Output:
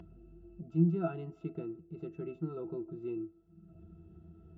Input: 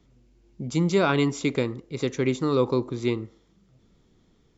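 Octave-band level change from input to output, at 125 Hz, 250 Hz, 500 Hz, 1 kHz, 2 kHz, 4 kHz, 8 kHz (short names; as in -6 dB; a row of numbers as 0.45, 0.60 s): -7.0 dB, -9.5 dB, -14.5 dB, -18.0 dB, -26.0 dB, under -35 dB, n/a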